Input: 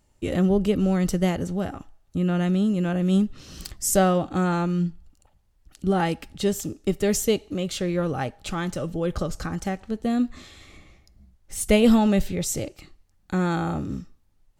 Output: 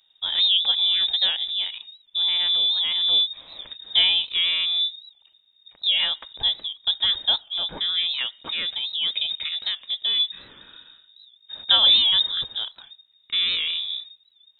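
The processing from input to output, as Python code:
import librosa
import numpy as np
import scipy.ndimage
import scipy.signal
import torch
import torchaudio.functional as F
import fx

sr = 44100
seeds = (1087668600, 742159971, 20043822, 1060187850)

y = fx.freq_invert(x, sr, carrier_hz=3700)
y = fx.record_warp(y, sr, rpm=78.0, depth_cents=100.0)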